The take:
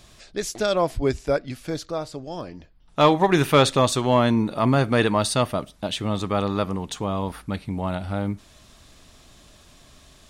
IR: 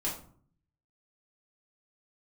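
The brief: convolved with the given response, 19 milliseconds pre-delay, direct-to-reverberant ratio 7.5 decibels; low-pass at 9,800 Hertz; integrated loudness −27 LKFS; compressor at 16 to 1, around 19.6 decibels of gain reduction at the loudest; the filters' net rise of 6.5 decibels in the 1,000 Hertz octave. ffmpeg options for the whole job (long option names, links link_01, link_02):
-filter_complex "[0:a]lowpass=9800,equalizer=frequency=1000:width_type=o:gain=8,acompressor=threshold=-28dB:ratio=16,asplit=2[link_01][link_02];[1:a]atrim=start_sample=2205,adelay=19[link_03];[link_02][link_03]afir=irnorm=-1:irlink=0,volume=-12dB[link_04];[link_01][link_04]amix=inputs=2:normalize=0,volume=6dB"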